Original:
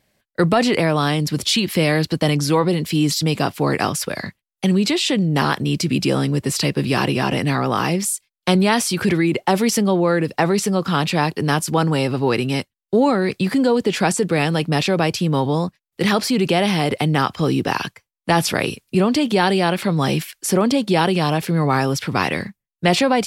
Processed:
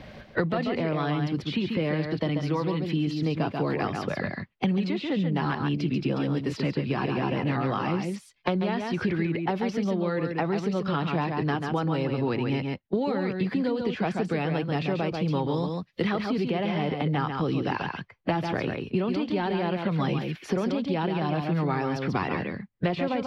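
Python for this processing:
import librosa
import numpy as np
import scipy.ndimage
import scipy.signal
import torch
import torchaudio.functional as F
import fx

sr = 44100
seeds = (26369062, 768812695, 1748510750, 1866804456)

y = fx.spec_quant(x, sr, step_db=15)
y = fx.high_shelf(y, sr, hz=5700.0, db=8.0, at=(14.23, 16.5))
y = fx.rider(y, sr, range_db=4, speed_s=0.5)
y = fx.air_absorb(y, sr, metres=280.0)
y = y + 10.0 ** (-6.0 / 20.0) * np.pad(y, (int(138 * sr / 1000.0), 0))[:len(y)]
y = fx.band_squash(y, sr, depth_pct=100)
y = y * librosa.db_to_amplitude(-9.0)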